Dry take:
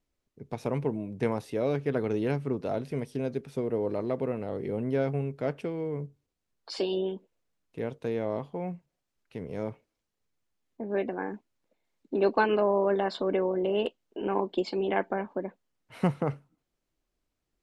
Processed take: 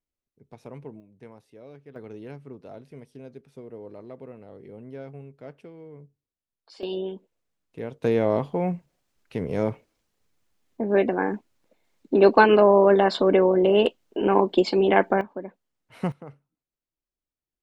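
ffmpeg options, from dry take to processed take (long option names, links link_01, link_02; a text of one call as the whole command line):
ffmpeg -i in.wav -af "asetnsamples=nb_out_samples=441:pad=0,asendcmd='1 volume volume -18dB;1.96 volume volume -11.5dB;6.83 volume volume -0.5dB;8.03 volume volume 9dB;15.21 volume volume -1.5dB;16.12 volume volume -13dB',volume=-11dB" out.wav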